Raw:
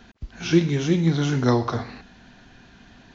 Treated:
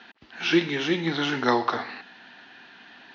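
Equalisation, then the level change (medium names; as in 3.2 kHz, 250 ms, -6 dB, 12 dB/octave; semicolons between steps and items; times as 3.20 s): cabinet simulation 290–4300 Hz, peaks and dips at 310 Hz +3 dB, 860 Hz +7 dB, 1.3 kHz +4 dB, 1.8 kHz +7 dB, 2.8 kHz +4 dB; treble shelf 2.6 kHz +10 dB; -2.5 dB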